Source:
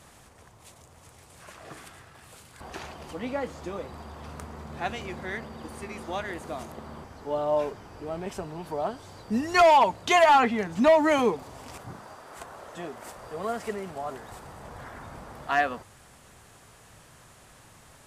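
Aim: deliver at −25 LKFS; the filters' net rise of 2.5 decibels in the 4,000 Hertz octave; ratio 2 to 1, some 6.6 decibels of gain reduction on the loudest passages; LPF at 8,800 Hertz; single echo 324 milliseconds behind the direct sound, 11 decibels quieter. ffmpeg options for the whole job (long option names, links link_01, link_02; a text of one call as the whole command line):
ffmpeg -i in.wav -af "lowpass=8800,equalizer=frequency=4000:width_type=o:gain=3.5,acompressor=threshold=-27dB:ratio=2,aecho=1:1:324:0.282,volume=7dB" out.wav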